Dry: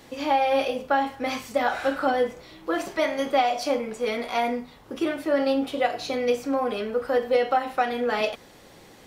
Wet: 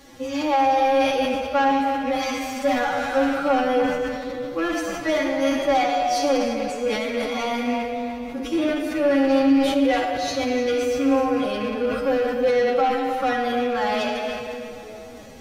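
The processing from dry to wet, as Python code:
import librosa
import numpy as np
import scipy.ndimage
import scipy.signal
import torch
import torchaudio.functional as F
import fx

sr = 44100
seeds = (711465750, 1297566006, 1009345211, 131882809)

p1 = fx.rattle_buzz(x, sr, strikes_db=-35.0, level_db=-26.0)
p2 = 10.0 ** (-18.0 / 20.0) * np.tanh(p1 / 10.0 ** (-18.0 / 20.0))
p3 = fx.low_shelf(p2, sr, hz=230.0, db=3.0)
p4 = fx.room_shoebox(p3, sr, seeds[0], volume_m3=2800.0, walls='mixed', distance_m=2.3)
p5 = fx.stretch_vocoder(p4, sr, factor=1.7)
p6 = fx.peak_eq(p5, sr, hz=6100.0, db=5.5, octaves=0.29)
p7 = p6 + fx.echo_single(p6, sr, ms=303, db=-12.5, dry=0)
y = fx.sustainer(p7, sr, db_per_s=42.0)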